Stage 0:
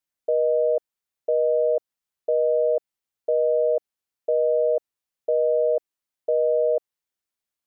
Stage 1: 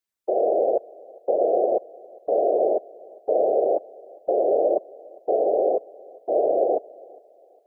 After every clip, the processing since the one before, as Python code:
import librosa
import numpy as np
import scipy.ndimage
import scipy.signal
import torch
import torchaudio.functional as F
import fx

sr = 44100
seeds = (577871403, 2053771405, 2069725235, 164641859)

y = fx.whisperise(x, sr, seeds[0])
y = fx.echo_thinned(y, sr, ms=405, feedback_pct=40, hz=360.0, wet_db=-22.0)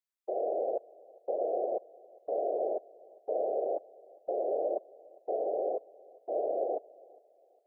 y = fx.low_shelf(x, sr, hz=290.0, db=-8.5)
y = F.gain(torch.from_numpy(y), -9.0).numpy()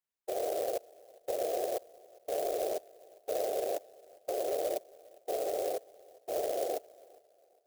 y = fx.clock_jitter(x, sr, seeds[1], jitter_ms=0.061)
y = F.gain(torch.from_numpy(y), -1.5).numpy()